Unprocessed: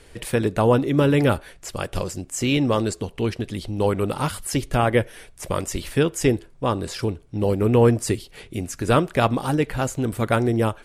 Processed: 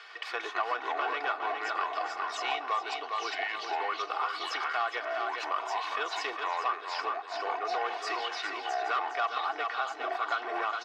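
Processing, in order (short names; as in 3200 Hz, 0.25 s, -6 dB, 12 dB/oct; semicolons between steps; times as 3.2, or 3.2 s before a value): thirty-one-band EQ 1250 Hz +10 dB, 5000 Hz +6 dB, 10000 Hz -9 dB; soft clip -14 dBFS, distortion -13 dB; echoes that change speed 0.101 s, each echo -5 st, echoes 2; HPF 710 Hz 24 dB/oct; air absorption 230 m; comb 2.7 ms, depth 72%; feedback echo 0.409 s, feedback 36%, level -7.5 dB; compressor 2.5:1, threshold -30 dBFS, peak gain reduction 9 dB; mismatched tape noise reduction encoder only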